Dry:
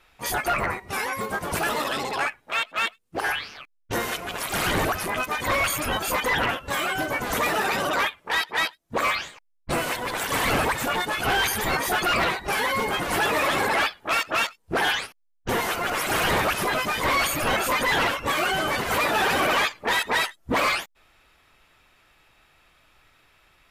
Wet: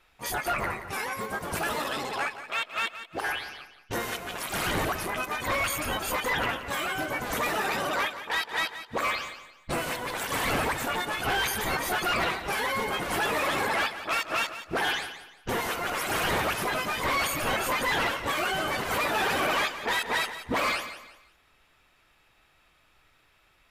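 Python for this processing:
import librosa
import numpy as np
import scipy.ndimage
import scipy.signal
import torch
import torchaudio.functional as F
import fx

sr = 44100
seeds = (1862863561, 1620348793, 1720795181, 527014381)

y = fx.echo_feedback(x, sr, ms=175, feedback_pct=31, wet_db=-12)
y = y * 10.0 ** (-4.5 / 20.0)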